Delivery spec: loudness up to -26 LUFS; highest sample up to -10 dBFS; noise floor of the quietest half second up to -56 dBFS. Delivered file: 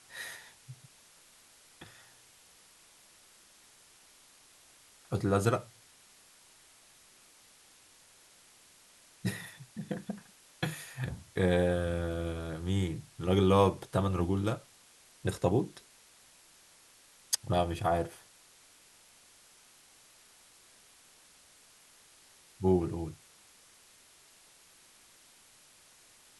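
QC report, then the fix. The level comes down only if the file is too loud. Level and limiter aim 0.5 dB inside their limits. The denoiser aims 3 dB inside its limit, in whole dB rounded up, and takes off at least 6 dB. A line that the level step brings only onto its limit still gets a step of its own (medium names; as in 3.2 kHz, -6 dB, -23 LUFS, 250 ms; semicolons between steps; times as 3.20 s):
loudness -32.0 LUFS: pass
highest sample -11.0 dBFS: pass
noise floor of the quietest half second -60 dBFS: pass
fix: none needed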